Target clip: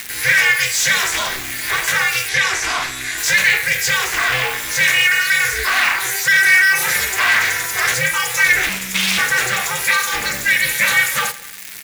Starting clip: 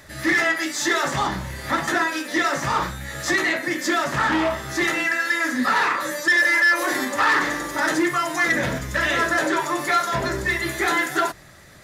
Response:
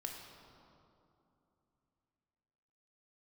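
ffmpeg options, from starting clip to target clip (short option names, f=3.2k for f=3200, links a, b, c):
-filter_complex "[0:a]asettb=1/sr,asplit=3[a][b][c];[a]atrim=end=8.694[d];[b]atrim=start=8.69:end=9.18,asetpts=PTS-STARTPTS,afade=t=in:d=0.004:c=qsin,afade=t=out:st=0.486:d=0.004:c=qsin,aeval=exprs='abs(val(0))':c=same[e];[c]atrim=start=9.176[f];[d][e]acrossfade=d=0.004:c1=hsin:c2=qsin[g];[g][f]acrossfade=d=0.004:c1=qsin:c2=hsin,acrusher=bits=8:dc=4:mix=0:aa=0.000001,crystalizer=i=8.5:c=0,asplit=2[h][i];[i]aecho=0:1:86|172|258|344:0.106|0.0551|0.0286|0.0149[j];[h][j]amix=inputs=2:normalize=0,asoftclip=type=tanh:threshold=-7.5dB,asettb=1/sr,asplit=3[k][l][m];[k]atrim=end=2.294[n];[l]atrim=start=2.29:end=3.18,asetpts=PTS-STARTPTS,afade=t=in:d=0.004:c=qsin,afade=t=out:st=0.886:d=0.004:c=qsin,lowpass=9.2k[o];[m]atrim=start=3.176[p];[n][o]acrossfade=d=0.004:c1=hsin:c2=qsin[q];[q][p]acrossfade=d=0.004:c1=qsin:c2=hsin,acompressor=mode=upward:threshold=-18dB:ratio=2.5,equalizer=f=2.3k:t=o:w=0.8:g=11,aeval=exprs='val(0)*sin(2*PI*190*n/s)':c=same,volume=-3dB"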